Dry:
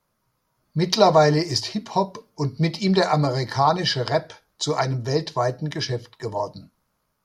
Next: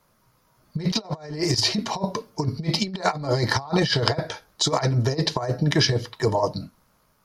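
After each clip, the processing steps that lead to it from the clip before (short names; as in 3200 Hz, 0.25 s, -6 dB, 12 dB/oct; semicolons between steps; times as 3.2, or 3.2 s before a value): negative-ratio compressor -26 dBFS, ratio -0.5; gain +3.5 dB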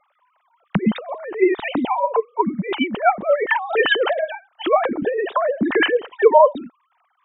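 sine-wave speech; gain +5 dB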